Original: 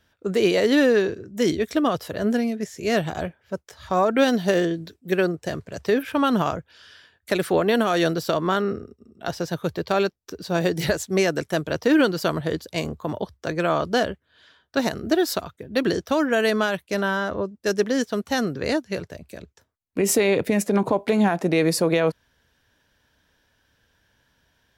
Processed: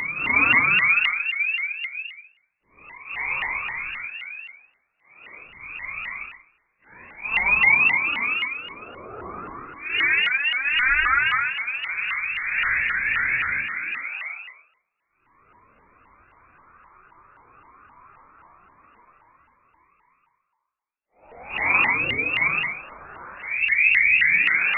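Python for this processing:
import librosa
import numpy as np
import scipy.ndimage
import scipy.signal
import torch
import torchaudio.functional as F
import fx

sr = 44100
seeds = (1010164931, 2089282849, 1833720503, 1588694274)

p1 = fx.paulstretch(x, sr, seeds[0], factor=10.0, window_s=0.05, from_s=5.15)
p2 = fx.brickwall_highpass(p1, sr, low_hz=270.0)
p3 = p2 + fx.echo_single(p2, sr, ms=187, db=-20.5, dry=0)
p4 = fx.freq_invert(p3, sr, carrier_hz=2800)
y = fx.vibrato_shape(p4, sr, shape='saw_up', rate_hz=3.8, depth_cents=250.0)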